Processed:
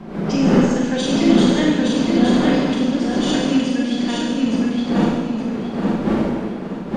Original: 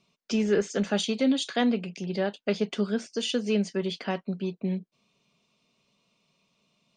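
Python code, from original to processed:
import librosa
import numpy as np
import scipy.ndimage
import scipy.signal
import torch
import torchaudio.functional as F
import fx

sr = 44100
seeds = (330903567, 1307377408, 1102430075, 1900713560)

p1 = fx.dmg_wind(x, sr, seeds[0], corner_hz=490.0, level_db=-29.0)
p2 = fx.peak_eq(p1, sr, hz=740.0, db=-4.0, octaves=1.6)
p3 = fx.pitch_keep_formants(p2, sr, semitones=4.0)
p4 = fx.low_shelf_res(p3, sr, hz=140.0, db=-9.0, q=3.0)
p5 = p4 + fx.echo_feedback(p4, sr, ms=867, feedback_pct=32, wet_db=-3.5, dry=0)
p6 = fx.rev_schroeder(p5, sr, rt60_s=1.3, comb_ms=33, drr_db=-2.5)
y = F.gain(torch.from_numpy(p6), 2.0).numpy()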